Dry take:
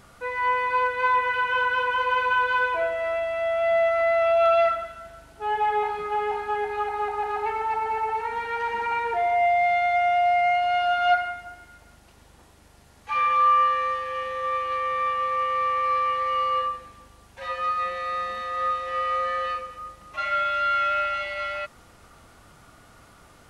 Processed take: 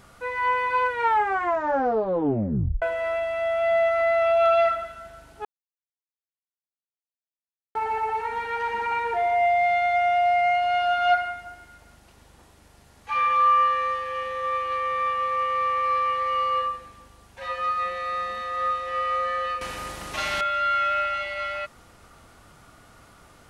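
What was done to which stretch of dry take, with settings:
0.89 s: tape stop 1.93 s
5.45–7.75 s: mute
19.61–20.41 s: spectrum-flattening compressor 2:1

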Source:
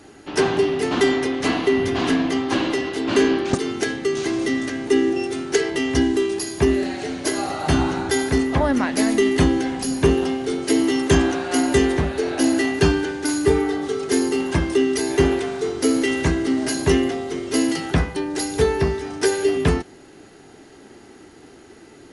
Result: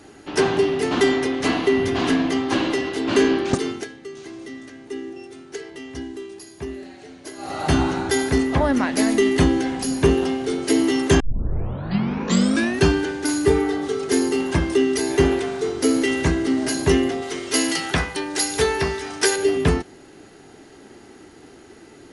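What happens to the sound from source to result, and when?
3.66–7.60 s: dip -14 dB, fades 0.22 s
11.20 s: tape start 1.65 s
17.22–19.36 s: tilt shelf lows -6 dB, about 650 Hz

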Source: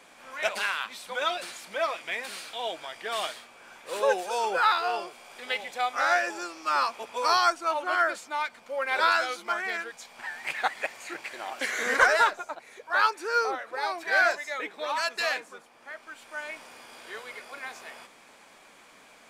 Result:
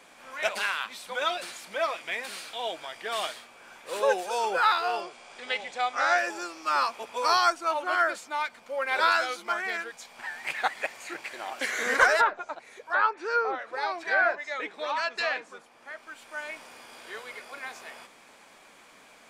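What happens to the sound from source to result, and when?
5.01–6.18 s: low-pass 8.5 kHz 24 dB/octave
12.20–15.98 s: low-pass that closes with the level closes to 1.9 kHz, closed at -21 dBFS

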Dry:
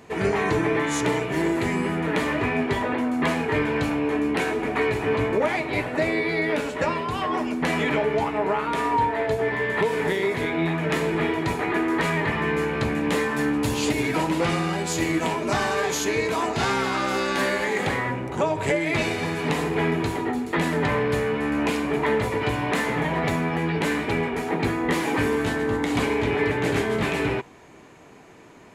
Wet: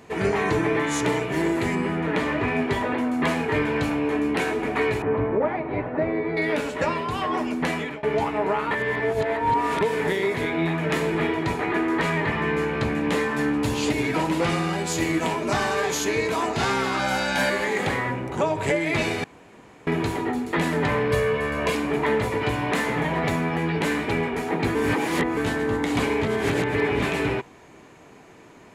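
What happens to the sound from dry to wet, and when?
1.75–2.48 s: treble shelf 6.5 kHz -10 dB
5.02–6.37 s: low-pass 1.3 kHz
7.62–8.03 s: fade out, to -22.5 dB
8.71–9.81 s: reverse
11.27–14.25 s: treble shelf 8.4 kHz -6.5 dB
16.99–17.50 s: comb 1.3 ms, depth 78%
19.24–19.87 s: room tone
21.11–21.75 s: comb 1.8 ms, depth 70%
24.75–25.37 s: reverse
26.24–27.02 s: reverse

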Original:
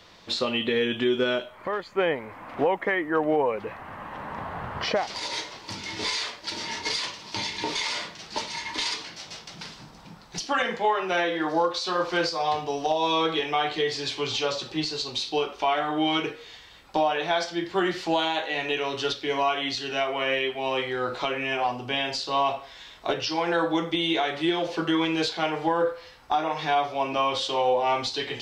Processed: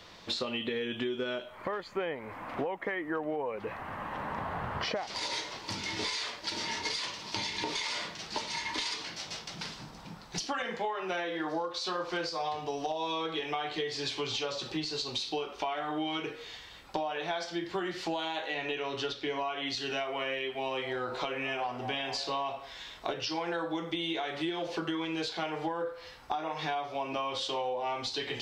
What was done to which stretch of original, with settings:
18.54–19.67 s: treble shelf 7.6 kHz -10 dB
20.61–22.47 s: repeats whose band climbs or falls 229 ms, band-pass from 580 Hz, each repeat 0.7 oct, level -10 dB
whole clip: compression 6:1, threshold -31 dBFS

